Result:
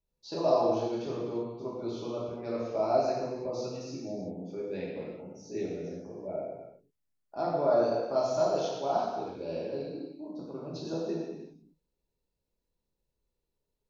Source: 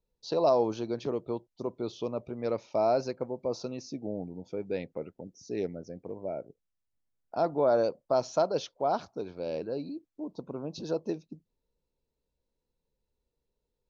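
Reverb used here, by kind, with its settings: gated-style reverb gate 410 ms falling, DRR -6.5 dB; trim -8 dB

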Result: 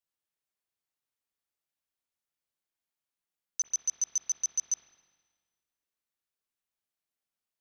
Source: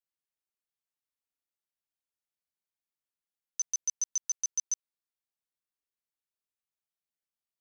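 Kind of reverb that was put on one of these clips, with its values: spring tank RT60 1.5 s, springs 42/57 ms, chirp 25 ms, DRR 4.5 dB; trim +1 dB

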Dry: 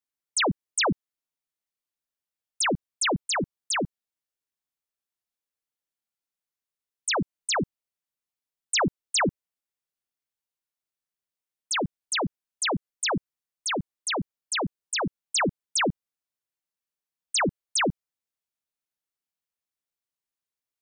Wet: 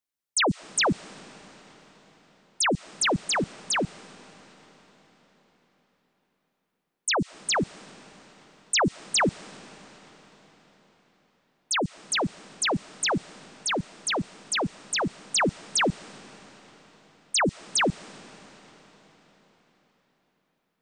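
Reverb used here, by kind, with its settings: algorithmic reverb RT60 5 s, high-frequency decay 0.9×, pre-delay 95 ms, DRR 19 dB; trim +1 dB

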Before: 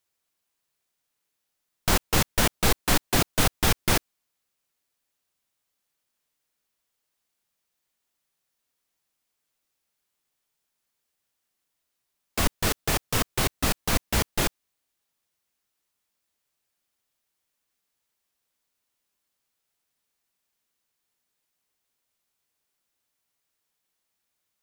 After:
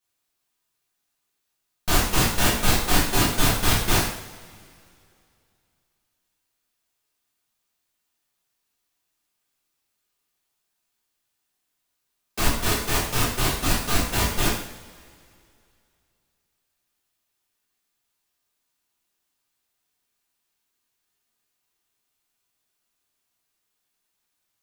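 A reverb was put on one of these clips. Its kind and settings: two-slope reverb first 0.64 s, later 2.6 s, from -20 dB, DRR -9 dB; trim -7 dB

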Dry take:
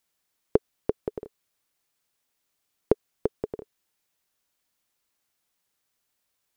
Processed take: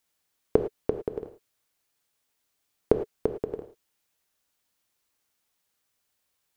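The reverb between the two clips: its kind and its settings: gated-style reverb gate 130 ms flat, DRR 7 dB

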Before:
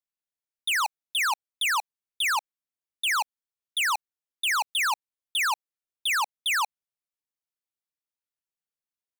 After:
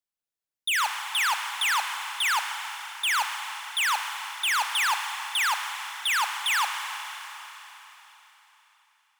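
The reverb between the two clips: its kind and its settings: Schroeder reverb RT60 3.9 s, combs from 31 ms, DRR 4.5 dB

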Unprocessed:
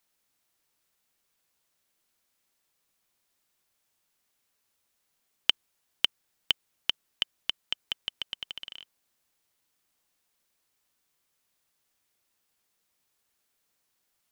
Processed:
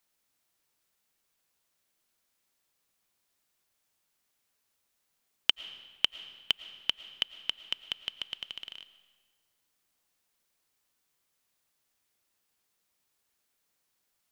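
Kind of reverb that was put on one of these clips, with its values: algorithmic reverb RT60 1.4 s, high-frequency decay 0.85×, pre-delay 70 ms, DRR 14.5 dB; trim -1.5 dB

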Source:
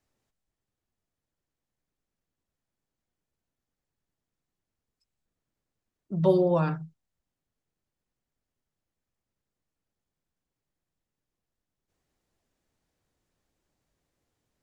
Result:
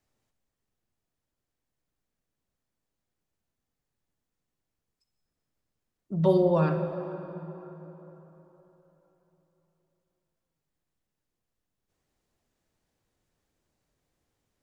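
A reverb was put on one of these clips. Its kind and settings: plate-style reverb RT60 3.9 s, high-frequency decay 0.6×, DRR 6.5 dB

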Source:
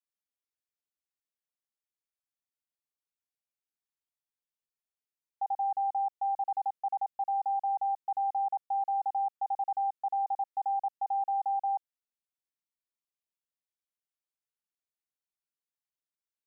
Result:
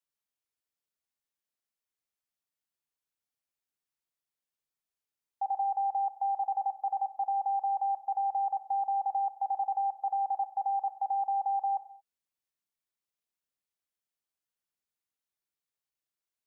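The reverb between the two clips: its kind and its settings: gated-style reverb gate 250 ms falling, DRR 10.5 dB; trim +1 dB

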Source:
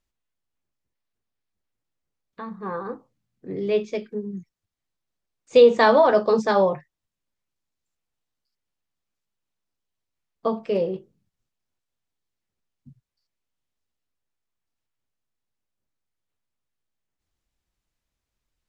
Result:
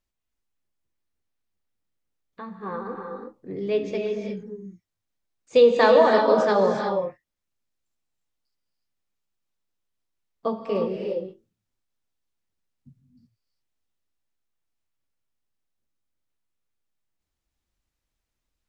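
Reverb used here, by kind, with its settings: gated-style reverb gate 380 ms rising, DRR 2.5 dB; trim -2.5 dB

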